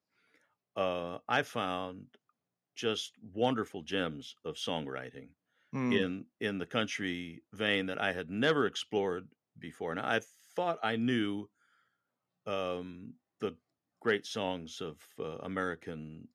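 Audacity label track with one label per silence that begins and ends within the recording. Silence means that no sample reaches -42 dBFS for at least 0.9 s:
11.430000	12.470000	silence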